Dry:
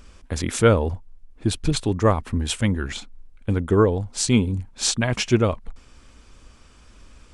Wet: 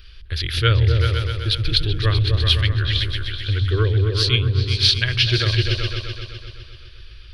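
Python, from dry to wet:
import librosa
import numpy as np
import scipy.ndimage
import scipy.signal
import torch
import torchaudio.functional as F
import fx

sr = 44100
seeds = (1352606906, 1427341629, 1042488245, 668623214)

p1 = fx.curve_eq(x, sr, hz=(120.0, 200.0, 380.0, 820.0, 1600.0, 2200.0, 3200.0, 4600.0, 7500.0, 12000.0), db=(0, -28, -8, -23, 2, 0, 9, 8, -27, 1))
p2 = p1 + fx.echo_opening(p1, sr, ms=127, hz=200, octaves=2, feedback_pct=70, wet_db=0, dry=0)
y = p2 * librosa.db_to_amplitude(3.0)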